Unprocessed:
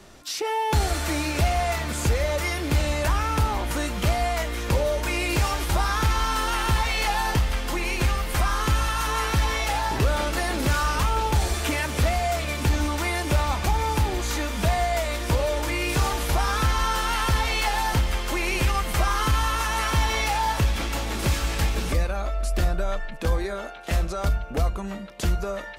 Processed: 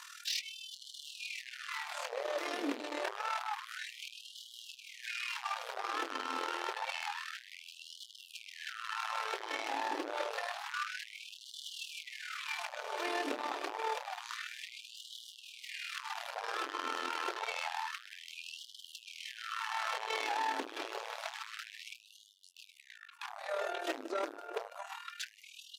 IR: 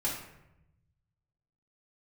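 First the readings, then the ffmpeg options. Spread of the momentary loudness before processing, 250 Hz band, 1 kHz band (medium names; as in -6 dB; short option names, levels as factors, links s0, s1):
4 LU, -17.5 dB, -13.0 dB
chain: -filter_complex "[0:a]lowshelf=f=85:g=9,flanger=delay=2.9:depth=1.8:regen=-33:speed=0.12:shape=sinusoidal,equalizer=f=270:t=o:w=2.3:g=3.5,bandreject=f=2100:w=21,asplit=2[s0][s1];[s1]aecho=0:1:144|288|432|576:0.119|0.0582|0.0285|0.014[s2];[s0][s2]amix=inputs=2:normalize=0,acrossover=split=4800[s3][s4];[s4]acompressor=threshold=0.00178:ratio=4:attack=1:release=60[s5];[s3][s5]amix=inputs=2:normalize=0,tremolo=f=39:d=0.75,acompressor=threshold=0.0141:ratio=2,asoftclip=type=tanh:threshold=0.0106,bandreject=f=60:t=h:w=6,bandreject=f=120:t=h:w=6,bandreject=f=180:t=h:w=6,bandreject=f=240:t=h:w=6,bandreject=f=300:t=h:w=6,afftfilt=real='re*gte(b*sr/1024,250*pow(2900/250,0.5+0.5*sin(2*PI*0.28*pts/sr)))':imag='im*gte(b*sr/1024,250*pow(2900/250,0.5+0.5*sin(2*PI*0.28*pts/sr)))':win_size=1024:overlap=0.75,volume=3.55"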